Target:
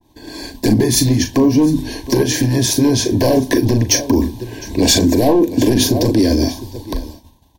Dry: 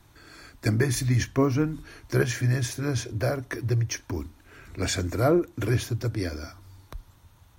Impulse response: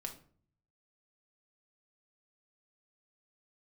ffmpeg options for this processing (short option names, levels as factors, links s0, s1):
-filter_complex "[0:a]asettb=1/sr,asplit=3[s0][s1][s2];[s0]atrim=end=0.744[s3];[s1]atrim=start=0.74:end=3.17,asetpts=PTS-STARTPTS,afade=t=in:d=0.004:c=qsin,afade=t=out:st=2.426:d=0.004:c=qsin,acompressor=threshold=0.0447:ratio=12[s4];[s2]atrim=start=3.166[s5];[s3][s4]acrossfade=d=0.004:c1=hsin:c2=qsin[s6];[s6][s5]acrossfade=d=0.004:c1=qsin:c2=hsin,asplit=2[s7][s8];[s8]adelay=39,volume=0.316[s9];[s7][s9]amix=inputs=2:normalize=0,aecho=1:1:707:0.106,aeval=exprs='clip(val(0),-1,0.0473)':c=same,equalizer=f=125:t=o:w=1:g=-7,equalizer=f=250:t=o:w=1:g=10,equalizer=f=1000:t=o:w=1:g=4,equalizer=f=2000:t=o:w=1:g=-11,equalizer=f=4000:t=o:w=1:g=3,equalizer=f=8000:t=o:w=1:g=-4,agate=range=0.0224:threshold=0.00562:ratio=3:detection=peak,asuperstop=centerf=1300:order=20:qfactor=3,bandreject=f=50:t=h:w=6,bandreject=f=100:t=h:w=6,bandreject=f=150:t=h:w=6,bandreject=f=200:t=h:w=6,bandreject=f=250:t=h:w=6,alimiter=level_in=11.9:limit=0.891:release=50:level=0:latency=1,adynamicequalizer=threshold=0.02:dfrequency=2400:dqfactor=0.7:tfrequency=2400:tqfactor=0.7:attack=5:release=100:ratio=0.375:range=2:mode=boostabove:tftype=highshelf,volume=0.668"